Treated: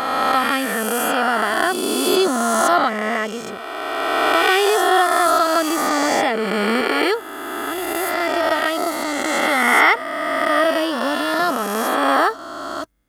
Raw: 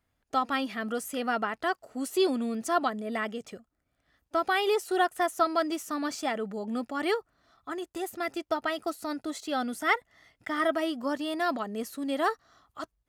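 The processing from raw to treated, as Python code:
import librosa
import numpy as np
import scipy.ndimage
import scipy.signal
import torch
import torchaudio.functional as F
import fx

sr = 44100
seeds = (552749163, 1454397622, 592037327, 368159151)

y = fx.spec_swells(x, sr, rise_s=2.65)
y = fx.high_shelf(y, sr, hz=10000.0, db=5.0)
y = fx.band_squash(y, sr, depth_pct=70, at=(5.26, 6.81))
y = y * 10.0 ** (6.0 / 20.0)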